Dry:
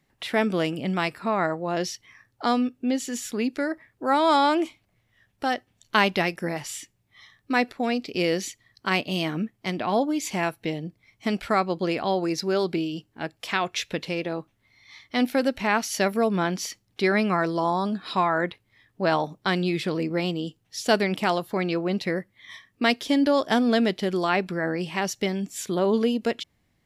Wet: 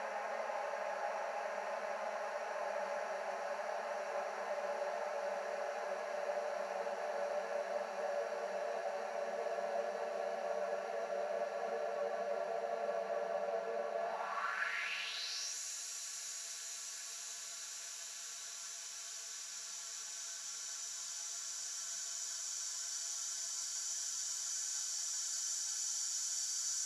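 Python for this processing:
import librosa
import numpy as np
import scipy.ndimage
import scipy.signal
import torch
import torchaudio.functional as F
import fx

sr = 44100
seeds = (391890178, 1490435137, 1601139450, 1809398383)

y = fx.paulstretch(x, sr, seeds[0], factor=35.0, window_s=1.0, from_s=15.77)
y = fx.tone_stack(y, sr, knobs='10-0-10')
y = fx.filter_sweep_bandpass(y, sr, from_hz=580.0, to_hz=7100.0, start_s=13.95, end_s=15.59, q=3.4)
y = y * librosa.db_to_amplitude(5.5)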